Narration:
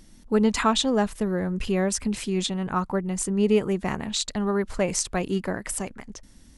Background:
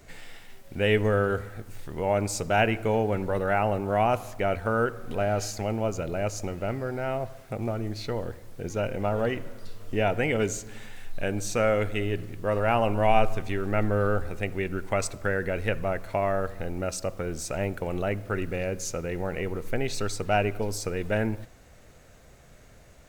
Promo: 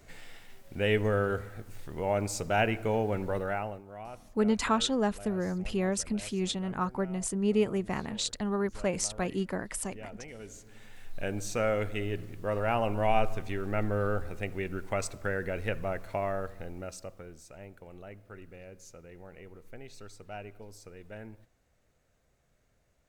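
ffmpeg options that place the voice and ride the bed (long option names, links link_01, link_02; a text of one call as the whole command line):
ffmpeg -i stem1.wav -i stem2.wav -filter_complex "[0:a]adelay=4050,volume=-5.5dB[link_01];[1:a]volume=11.5dB,afade=type=out:start_time=3.32:duration=0.51:silence=0.149624,afade=type=in:start_time=10.43:duration=0.78:silence=0.16788,afade=type=out:start_time=16.09:duration=1.34:silence=0.211349[link_02];[link_01][link_02]amix=inputs=2:normalize=0" out.wav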